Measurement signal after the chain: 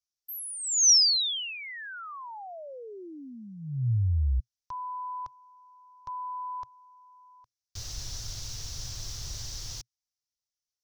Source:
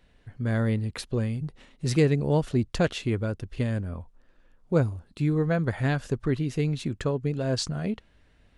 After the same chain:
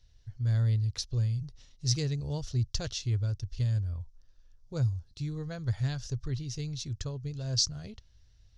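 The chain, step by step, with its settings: FFT filter 120 Hz 0 dB, 180 Hz -19 dB, 2.4 kHz -15 dB, 5.8 kHz +8 dB, 8.7 kHz -13 dB; trim +1.5 dB

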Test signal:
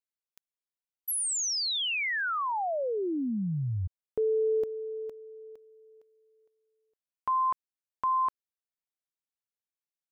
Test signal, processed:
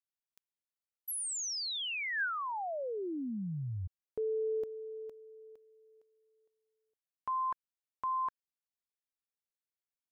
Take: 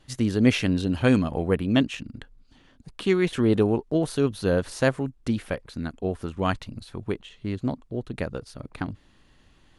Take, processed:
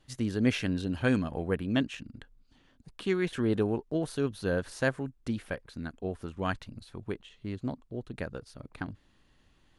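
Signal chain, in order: dynamic bell 1.6 kHz, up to +6 dB, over -51 dBFS, Q 5.8; trim -7 dB

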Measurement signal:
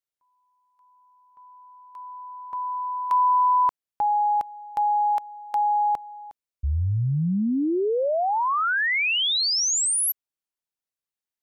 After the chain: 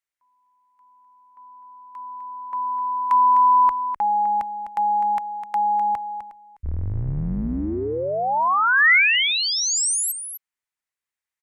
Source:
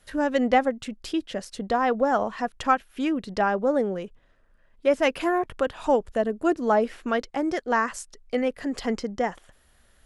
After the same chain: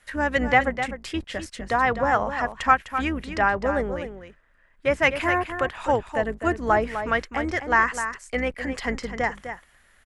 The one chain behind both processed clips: octave divider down 2 oct, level -2 dB; graphic EQ 1/2/8 kHz +5/+12/+5 dB; on a send: delay 254 ms -9.5 dB; on the sum: trim -4 dB

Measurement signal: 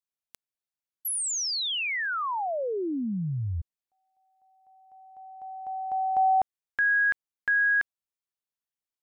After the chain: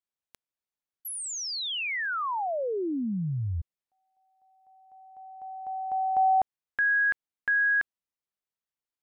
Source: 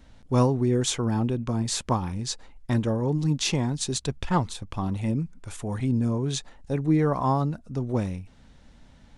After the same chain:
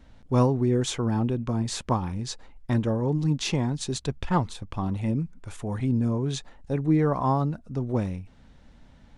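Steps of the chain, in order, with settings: treble shelf 4.3 kHz -7 dB

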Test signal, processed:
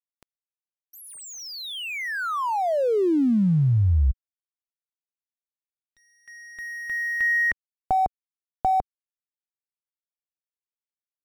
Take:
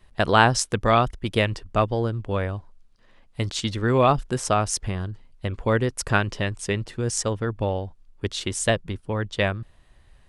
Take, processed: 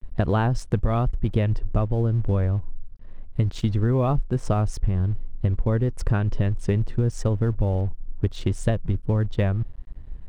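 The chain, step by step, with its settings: tilt EQ -4 dB/octave; crossover distortion -43 dBFS; compression 6:1, threshold -18 dBFS

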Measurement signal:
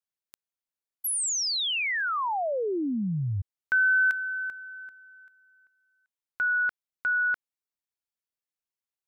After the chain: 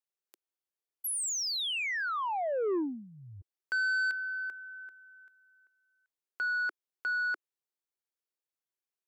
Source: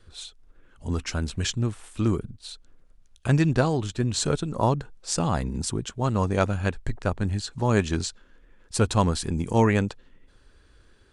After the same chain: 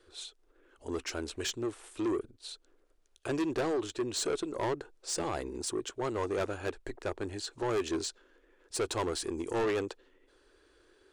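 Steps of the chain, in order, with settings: resonant low shelf 250 Hz -12 dB, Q 3; saturation -22.5 dBFS; trim -4 dB

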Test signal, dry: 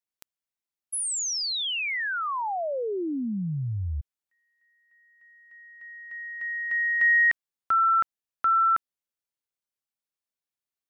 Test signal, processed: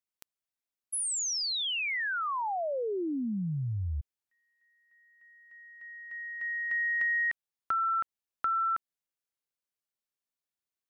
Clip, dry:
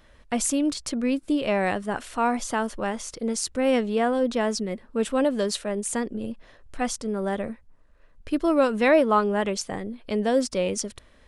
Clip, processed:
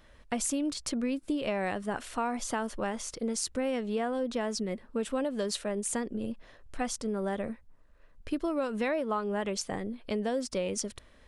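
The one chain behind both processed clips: compression 6:1, threshold -25 dBFS; trim -2.5 dB

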